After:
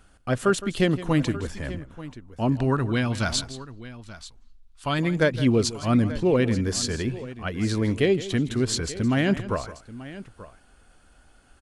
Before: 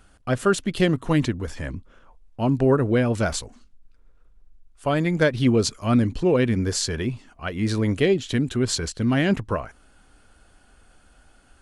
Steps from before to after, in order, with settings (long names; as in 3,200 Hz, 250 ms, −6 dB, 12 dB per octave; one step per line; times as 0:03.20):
0:02.52–0:04.99: octave-band graphic EQ 500/1,000/4,000 Hz −10/+3/+9 dB
on a send: multi-tap delay 163/884 ms −15.5/−16.5 dB
on the sum: level −1.5 dB